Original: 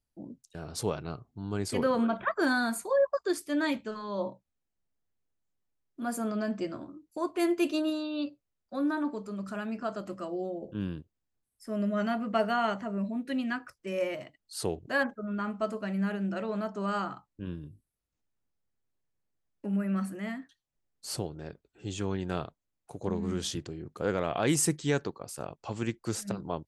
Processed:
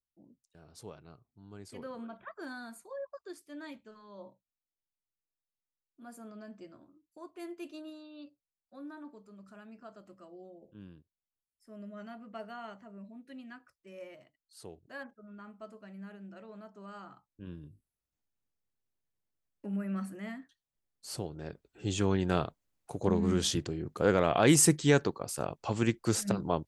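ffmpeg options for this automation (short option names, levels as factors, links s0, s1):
-af "volume=1.58,afade=t=in:st=17.01:d=0.64:silence=0.281838,afade=t=in:st=21.12:d=0.78:silence=0.354813"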